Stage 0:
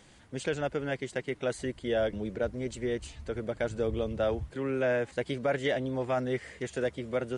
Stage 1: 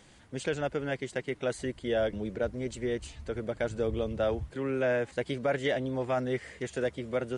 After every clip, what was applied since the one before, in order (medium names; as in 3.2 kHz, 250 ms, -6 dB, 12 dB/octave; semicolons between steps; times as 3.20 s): no audible change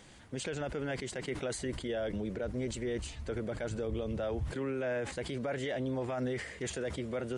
peak limiter -29 dBFS, peak gain reduction 11 dB; decay stretcher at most 90 dB/s; trim +1.5 dB